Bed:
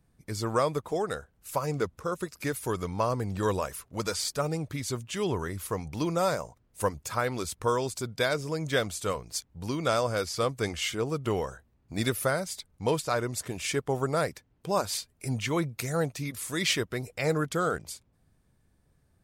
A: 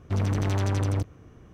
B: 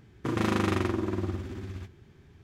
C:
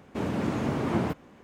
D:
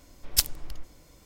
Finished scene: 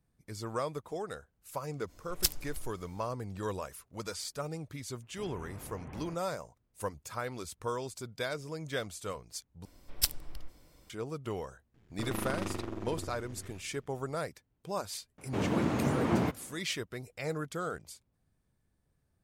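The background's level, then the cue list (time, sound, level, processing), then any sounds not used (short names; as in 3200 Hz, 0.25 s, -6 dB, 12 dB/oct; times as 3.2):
bed -8.5 dB
1.86 add D -6 dB, fades 0.05 s
5.02 add C -17.5 dB + mistuned SSB -160 Hz 210–3100 Hz
9.65 replace with D -5.5 dB + notch 6600 Hz, Q 6.8
11.74 add B -7 dB + half-wave gain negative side -12 dB
15.18 add C -1.5 dB
not used: A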